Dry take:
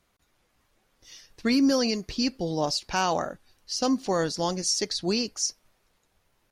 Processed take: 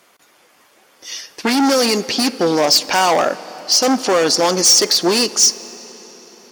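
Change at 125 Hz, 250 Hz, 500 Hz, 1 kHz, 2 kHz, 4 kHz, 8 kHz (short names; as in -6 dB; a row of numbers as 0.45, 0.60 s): +3.5, +7.0, +12.0, +12.0, +13.0, +14.5, +16.0 dB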